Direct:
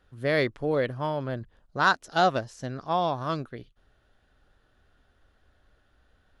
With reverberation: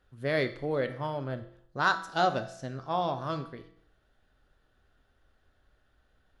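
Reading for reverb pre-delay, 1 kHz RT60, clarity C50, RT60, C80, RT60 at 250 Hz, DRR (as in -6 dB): 6 ms, 0.65 s, 12.5 dB, 0.65 s, 15.5 dB, 0.65 s, 8.0 dB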